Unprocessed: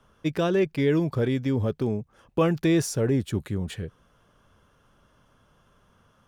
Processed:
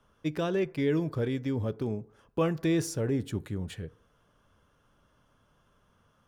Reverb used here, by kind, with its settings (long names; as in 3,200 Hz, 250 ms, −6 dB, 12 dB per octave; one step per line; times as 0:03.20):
feedback delay network reverb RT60 0.7 s, low-frequency decay 0.75×, high-frequency decay 0.35×, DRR 16.5 dB
level −5.5 dB